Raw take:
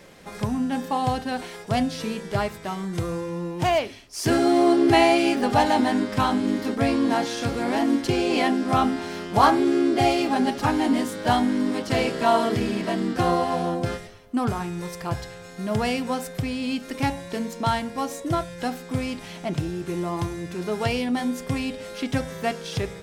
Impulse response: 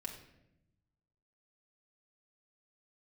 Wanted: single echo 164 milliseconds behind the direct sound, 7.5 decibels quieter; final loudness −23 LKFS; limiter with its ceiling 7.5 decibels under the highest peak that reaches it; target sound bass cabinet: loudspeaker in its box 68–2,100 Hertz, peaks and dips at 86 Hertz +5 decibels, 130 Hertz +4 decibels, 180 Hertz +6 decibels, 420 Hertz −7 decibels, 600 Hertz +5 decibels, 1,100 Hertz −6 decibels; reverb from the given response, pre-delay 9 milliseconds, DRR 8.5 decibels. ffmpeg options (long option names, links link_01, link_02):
-filter_complex "[0:a]alimiter=limit=-13dB:level=0:latency=1,aecho=1:1:164:0.422,asplit=2[link_01][link_02];[1:a]atrim=start_sample=2205,adelay=9[link_03];[link_02][link_03]afir=irnorm=-1:irlink=0,volume=-6.5dB[link_04];[link_01][link_04]amix=inputs=2:normalize=0,highpass=frequency=68:width=0.5412,highpass=frequency=68:width=1.3066,equalizer=frequency=86:width_type=q:width=4:gain=5,equalizer=frequency=130:width_type=q:width=4:gain=4,equalizer=frequency=180:width_type=q:width=4:gain=6,equalizer=frequency=420:width_type=q:width=4:gain=-7,equalizer=frequency=600:width_type=q:width=4:gain=5,equalizer=frequency=1100:width_type=q:width=4:gain=-6,lowpass=frequency=2100:width=0.5412,lowpass=frequency=2100:width=1.3066,volume=1dB"